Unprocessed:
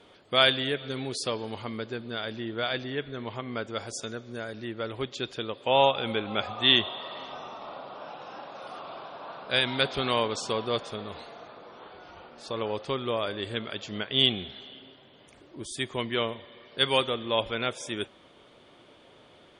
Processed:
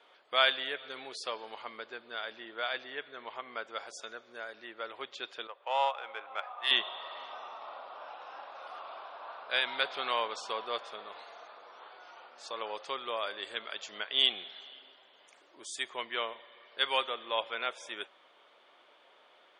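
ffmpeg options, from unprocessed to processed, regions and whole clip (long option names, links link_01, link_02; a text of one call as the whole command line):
ffmpeg -i in.wav -filter_complex "[0:a]asettb=1/sr,asplit=3[link_01][link_02][link_03];[link_01]atrim=end=5.474[link_04];[link_02]atrim=start=5.47:end=6.71,asetpts=PTS-STARTPTS,afade=type=in:duration=0.004:curve=qsin,afade=type=out:start_time=1.236:duration=0.004:curve=qsin,adynamicsmooth=sensitivity=0.5:basefreq=1800,highpass=650[link_05];[link_03]atrim=start=6.706[link_06];[link_04][link_05]acrossfade=duration=0.004:curve1=hsin:curve2=qsin[link_07];[link_07][link_06]acrossfade=duration=0.004:curve1=qsin:curve2=hsin,asettb=1/sr,asplit=3[link_08][link_09][link_10];[link_08]atrim=end=11.274[link_11];[link_09]atrim=start=11.27:end=15.9,asetpts=PTS-STARTPTS,afade=type=in:duration=0.004:curve=qsin,afade=type=out:start_time=4.626:duration=0.004:curve=qsin,highpass=55,equalizer=frequency=7100:width_type=o:width=0.96:gain=11.5[link_12];[link_10]atrim=start=15.896[link_13];[link_11][link_12]acrossfade=duration=0.004:curve1=hsin:curve2=qsin[link_14];[link_14][link_13]acrossfade=duration=0.004:curve1=qsin:curve2=hsin,highpass=810,aemphasis=mode=reproduction:type=75kf" out.wav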